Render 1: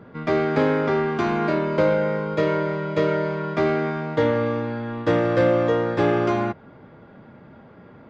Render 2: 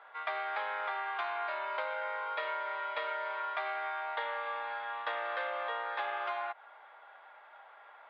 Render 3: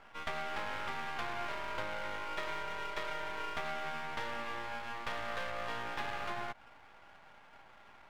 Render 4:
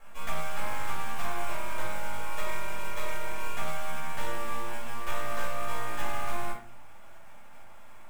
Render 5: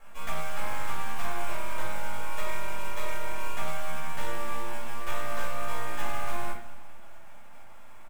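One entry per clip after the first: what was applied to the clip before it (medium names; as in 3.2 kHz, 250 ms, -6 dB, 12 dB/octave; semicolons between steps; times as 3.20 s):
elliptic band-pass 750–3700 Hz, stop band 60 dB; compression, threshold -33 dBFS, peak gain reduction 9 dB
half-wave rectifier; trim +1 dB
sample-rate reducer 10 kHz, jitter 20%; simulated room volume 370 m³, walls furnished, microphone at 5.7 m; trim -5.5 dB
feedback delay 211 ms, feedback 53%, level -16.5 dB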